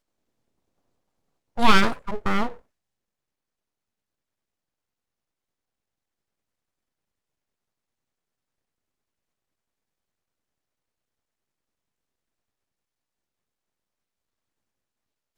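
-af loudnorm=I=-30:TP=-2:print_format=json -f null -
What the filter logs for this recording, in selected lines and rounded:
"input_i" : "-23.0",
"input_tp" : "-1.2",
"input_lra" : "8.4",
"input_thresh" : "-33.6",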